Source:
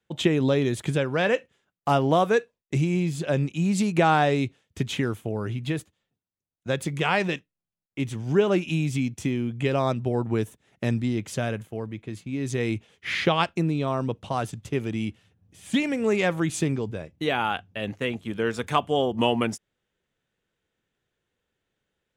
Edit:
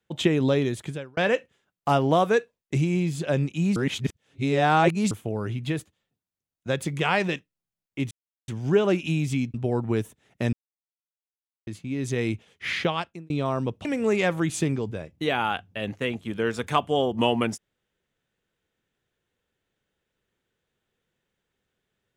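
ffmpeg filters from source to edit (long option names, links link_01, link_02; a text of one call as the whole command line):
ffmpeg -i in.wav -filter_complex "[0:a]asplit=10[link_01][link_02][link_03][link_04][link_05][link_06][link_07][link_08][link_09][link_10];[link_01]atrim=end=1.17,asetpts=PTS-STARTPTS,afade=type=out:start_time=0.58:duration=0.59[link_11];[link_02]atrim=start=1.17:end=3.762,asetpts=PTS-STARTPTS,afade=type=in:duration=0.004:curve=hsin[link_12];[link_03]atrim=start=3.758:end=5.112,asetpts=PTS-STARTPTS,areverse[link_13];[link_04]atrim=start=5.108:end=8.11,asetpts=PTS-STARTPTS,afade=type=out:start_time=2.998:duration=0.004:curve=hsin,apad=pad_dur=0.37[link_14];[link_05]atrim=start=8.11:end=9.172,asetpts=PTS-STARTPTS,afade=type=in:duration=0.004:curve=hsin[link_15];[link_06]atrim=start=9.958:end=10.95,asetpts=PTS-STARTPTS,afade=type=out:start_time=0.988:duration=0.004:curve=hsin[link_16];[link_07]atrim=start=10.95:end=12.09,asetpts=PTS-STARTPTS,volume=0[link_17];[link_08]atrim=start=12.09:end=13.72,asetpts=PTS-STARTPTS,afade=type=in:duration=0.004:curve=hsin,afade=type=out:start_time=1:duration=0.63[link_18];[link_09]atrim=start=13.72:end=14.272,asetpts=PTS-STARTPTS,afade=type=in:duration=0.004:curve=hsin[link_19];[link_10]atrim=start=15.848[link_20];[link_11][link_12]concat=n=2:v=0:a=1[link_21];[link_21][link_13]acrossfade=duration=0.004:curve1=hsin:curve2=hsin[link_22];[link_14][link_15]concat=n=2:v=0:a=1[link_23];[link_22][link_23]acrossfade=duration=0.004:curve1=hsin:curve2=hsin[link_24];[link_16][link_17][link_18][link_19]concat=n=4:v=0:a=1[link_25];[link_24][link_25]acrossfade=duration=0.004:curve1=hsin:curve2=hsin[link_26];[link_26][link_20]acrossfade=duration=0.004:curve1=hsin:curve2=hsin" out.wav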